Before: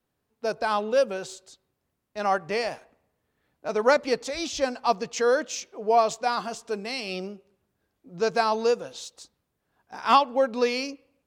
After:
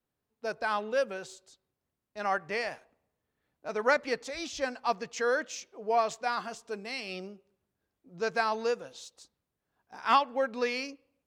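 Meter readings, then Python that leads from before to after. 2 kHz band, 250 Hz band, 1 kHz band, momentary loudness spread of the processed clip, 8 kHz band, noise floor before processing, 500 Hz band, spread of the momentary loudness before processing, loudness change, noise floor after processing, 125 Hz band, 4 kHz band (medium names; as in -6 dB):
-1.5 dB, -7.5 dB, -5.5 dB, 14 LU, -7.5 dB, -79 dBFS, -7.0 dB, 16 LU, -6.0 dB, under -85 dBFS, no reading, -6.5 dB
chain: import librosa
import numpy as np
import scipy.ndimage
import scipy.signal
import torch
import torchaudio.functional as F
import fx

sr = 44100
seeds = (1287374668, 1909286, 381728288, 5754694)

y = fx.dynamic_eq(x, sr, hz=1800.0, q=1.4, threshold_db=-42.0, ratio=4.0, max_db=8)
y = y * 10.0 ** (-7.5 / 20.0)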